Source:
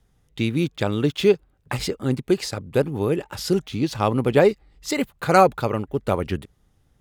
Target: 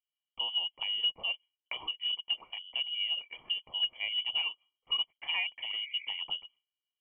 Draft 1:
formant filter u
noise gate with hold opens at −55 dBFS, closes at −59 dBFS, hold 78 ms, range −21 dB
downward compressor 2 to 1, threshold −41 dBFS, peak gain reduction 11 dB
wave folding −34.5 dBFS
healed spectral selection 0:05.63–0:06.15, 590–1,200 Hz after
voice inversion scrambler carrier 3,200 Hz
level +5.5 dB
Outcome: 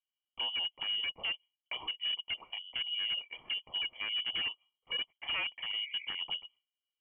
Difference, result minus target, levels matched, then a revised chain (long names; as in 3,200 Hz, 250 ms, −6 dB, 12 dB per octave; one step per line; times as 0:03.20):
wave folding: distortion +31 dB
formant filter u
noise gate with hold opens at −55 dBFS, closes at −59 dBFS, hold 78 ms, range −21 dB
downward compressor 2 to 1, threshold −41 dBFS, peak gain reduction 11 dB
wave folding −28 dBFS
healed spectral selection 0:05.63–0:06.15, 590–1,200 Hz after
voice inversion scrambler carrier 3,200 Hz
level +5.5 dB